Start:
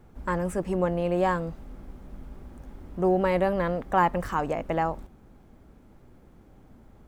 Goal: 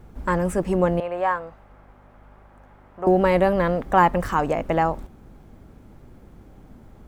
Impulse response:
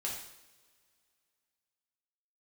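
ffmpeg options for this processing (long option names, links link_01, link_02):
-filter_complex "[0:a]asettb=1/sr,asplit=3[link_01][link_02][link_03];[link_01]atrim=end=1.004[link_04];[link_02]atrim=start=1:end=3.07,asetpts=PTS-STARTPTS,afade=type=in:duration=0.004:curve=qsin,afade=type=out:start_time=2.066:duration=0.004:curve=qsin,acrossover=split=560 2400:gain=0.1 1 0.178[link_05][link_06][link_07];[link_05][link_06][link_07]amix=inputs=3:normalize=0[link_08];[link_03]atrim=start=3.066[link_09];[link_04][link_08]acrossfade=duration=0.004:curve1=hsin:curve2=qsin[link_10];[link_10][link_09]acrossfade=duration=0.004:curve1=qsin:curve2=hsin,aeval=exprs='val(0)+0.00141*(sin(2*PI*50*n/s)+sin(2*PI*2*50*n/s)/2+sin(2*PI*3*50*n/s)/3+sin(2*PI*4*50*n/s)/4+sin(2*PI*5*50*n/s)/5)':channel_layout=same,volume=5.5dB"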